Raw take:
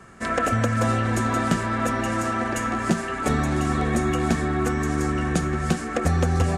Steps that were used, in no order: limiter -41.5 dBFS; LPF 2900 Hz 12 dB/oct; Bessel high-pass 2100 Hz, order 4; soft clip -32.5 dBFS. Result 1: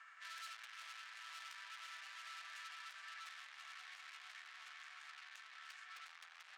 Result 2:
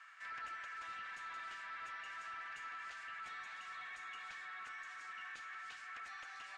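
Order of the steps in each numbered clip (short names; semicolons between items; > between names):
LPF > soft clip > limiter > Bessel high-pass; Bessel high-pass > soft clip > limiter > LPF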